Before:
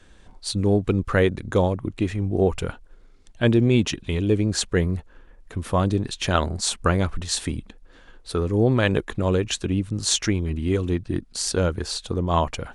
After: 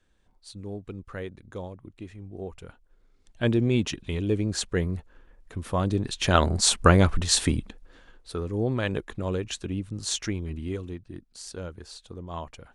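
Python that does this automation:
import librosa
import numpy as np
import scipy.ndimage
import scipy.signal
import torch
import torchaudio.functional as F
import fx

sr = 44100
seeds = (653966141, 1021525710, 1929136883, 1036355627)

y = fx.gain(x, sr, db=fx.line((2.61, -17.0), (3.43, -5.0), (5.77, -5.0), (6.61, 3.5), (7.51, 3.5), (8.31, -7.5), (10.6, -7.5), (11.03, -15.0)))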